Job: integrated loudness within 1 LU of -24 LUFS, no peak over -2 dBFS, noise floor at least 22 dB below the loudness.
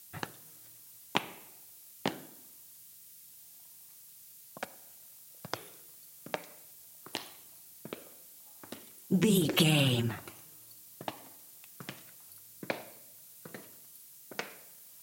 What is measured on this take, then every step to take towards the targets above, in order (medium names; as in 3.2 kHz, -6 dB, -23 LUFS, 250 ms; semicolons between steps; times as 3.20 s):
noise floor -54 dBFS; noise floor target -56 dBFS; loudness -33.5 LUFS; peak level -9.0 dBFS; loudness target -24.0 LUFS
-> noise reduction 6 dB, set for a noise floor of -54 dBFS; trim +9.5 dB; peak limiter -2 dBFS